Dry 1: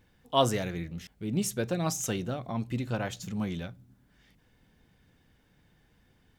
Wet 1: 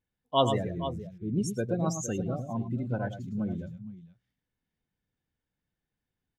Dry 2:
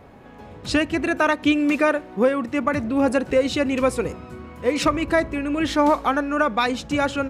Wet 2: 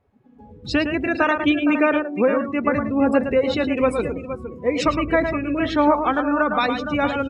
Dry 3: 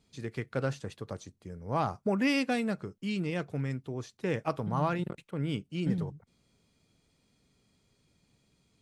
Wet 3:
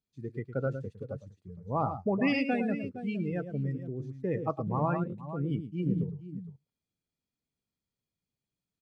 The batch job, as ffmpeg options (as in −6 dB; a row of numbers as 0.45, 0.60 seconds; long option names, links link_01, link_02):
-af "aecho=1:1:109|464:0.447|0.316,afftdn=noise_reduction=23:noise_floor=-31"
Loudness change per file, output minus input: +0.5, +1.0, +0.5 LU